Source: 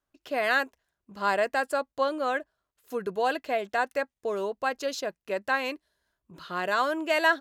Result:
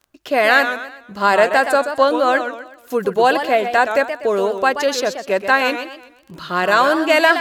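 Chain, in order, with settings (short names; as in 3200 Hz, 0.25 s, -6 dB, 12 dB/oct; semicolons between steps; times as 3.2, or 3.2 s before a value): crackle 14/s -43 dBFS; maximiser +14 dB; warbling echo 0.125 s, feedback 38%, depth 184 cents, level -9 dB; gain -2 dB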